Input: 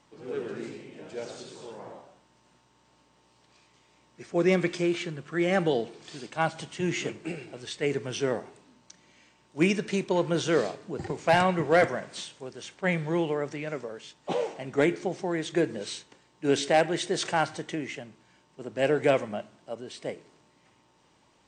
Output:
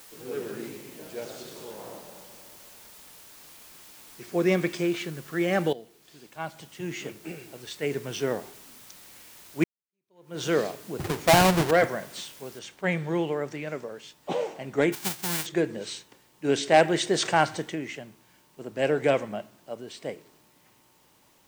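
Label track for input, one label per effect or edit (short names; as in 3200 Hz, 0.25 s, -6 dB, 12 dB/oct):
1.270000	4.240000	reverb throw, RT60 2.6 s, DRR 5 dB
5.730000	8.320000	fade in, from -16 dB
9.640000	10.430000	fade in exponential
11.000000	11.710000	half-waves squared off
12.590000	12.590000	noise floor step -50 dB -65 dB
14.920000	15.450000	spectral whitening exponent 0.1
16.720000	17.690000	gain +4 dB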